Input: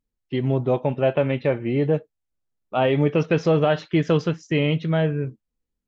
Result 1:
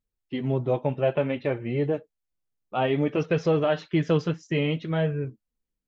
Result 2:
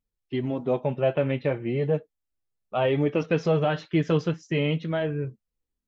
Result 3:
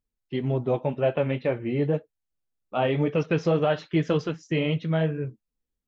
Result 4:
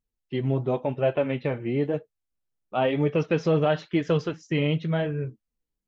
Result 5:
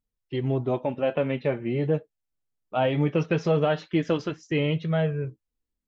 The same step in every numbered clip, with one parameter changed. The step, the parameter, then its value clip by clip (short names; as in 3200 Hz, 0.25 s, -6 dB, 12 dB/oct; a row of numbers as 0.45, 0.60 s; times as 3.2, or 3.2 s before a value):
flange, rate: 0.59, 0.37, 1.9, 0.96, 0.2 Hz